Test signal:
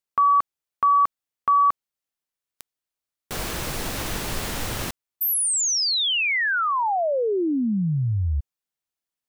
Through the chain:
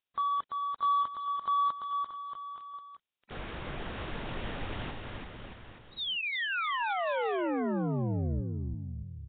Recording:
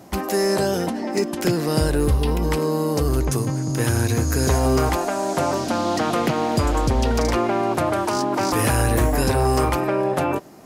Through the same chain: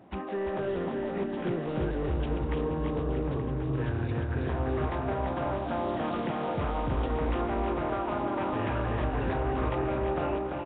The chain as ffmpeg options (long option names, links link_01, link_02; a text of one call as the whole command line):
ffmpeg -i in.wav -filter_complex "[0:a]asoftclip=type=tanh:threshold=-16.5dB,asplit=2[link_01][link_02];[link_02]aecho=0:1:340|629|874.6|1083|1261:0.631|0.398|0.251|0.158|0.1[link_03];[link_01][link_03]amix=inputs=2:normalize=0,volume=-9dB" -ar 8000 -c:a nellymoser out.flv